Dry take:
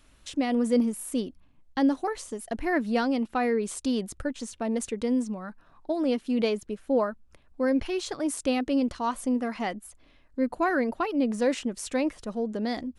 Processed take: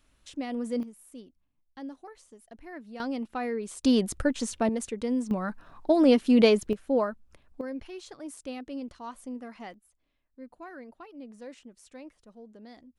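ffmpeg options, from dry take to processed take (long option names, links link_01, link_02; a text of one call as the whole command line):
ffmpeg -i in.wav -af "asetnsamples=nb_out_samples=441:pad=0,asendcmd='0.83 volume volume -17dB;3 volume volume -6dB;3.84 volume volume 5dB;4.69 volume volume -2.5dB;5.31 volume volume 6.5dB;6.73 volume volume -1dB;7.61 volume volume -12dB;9.74 volume volume -19dB',volume=-7.5dB" out.wav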